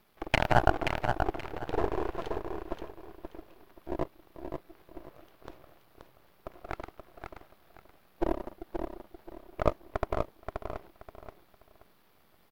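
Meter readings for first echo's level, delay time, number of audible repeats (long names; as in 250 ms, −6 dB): −6.0 dB, 528 ms, 3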